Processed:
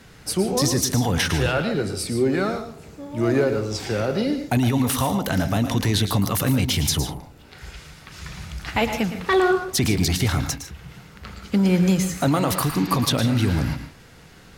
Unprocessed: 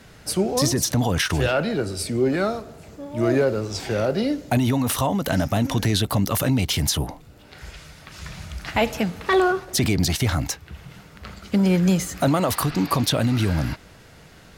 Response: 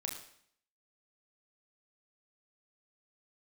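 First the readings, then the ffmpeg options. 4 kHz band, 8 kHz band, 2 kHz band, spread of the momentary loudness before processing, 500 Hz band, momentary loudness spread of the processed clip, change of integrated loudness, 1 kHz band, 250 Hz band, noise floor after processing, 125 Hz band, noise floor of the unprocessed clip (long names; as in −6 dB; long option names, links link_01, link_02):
+0.5 dB, +0.5 dB, +0.5 dB, 17 LU, −0.5 dB, 18 LU, +0.5 dB, 0.0 dB, +0.5 dB, −47 dBFS, +0.5 dB, −48 dBFS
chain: -filter_complex "[0:a]equalizer=frequency=620:width_type=o:width=0.21:gain=-6.5,asplit=2[link_01][link_02];[1:a]atrim=start_sample=2205,atrim=end_sample=3087,adelay=112[link_03];[link_02][link_03]afir=irnorm=-1:irlink=0,volume=-7.5dB[link_04];[link_01][link_04]amix=inputs=2:normalize=0"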